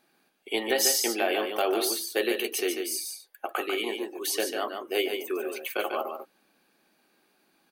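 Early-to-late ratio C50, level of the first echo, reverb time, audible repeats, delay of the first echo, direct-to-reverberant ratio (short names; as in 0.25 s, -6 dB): none, -6.0 dB, none, 1, 0.145 s, none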